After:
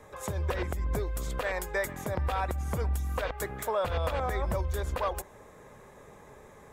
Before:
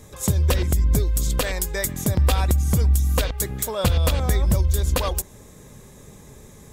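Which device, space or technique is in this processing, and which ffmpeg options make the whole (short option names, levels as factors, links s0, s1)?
DJ mixer with the lows and highs turned down: -filter_complex "[0:a]acrossover=split=470 2100:gain=0.178 1 0.126[s0][s1][s2];[s0][s1][s2]amix=inputs=3:normalize=0,alimiter=limit=0.0708:level=0:latency=1:release=97,volume=1.41"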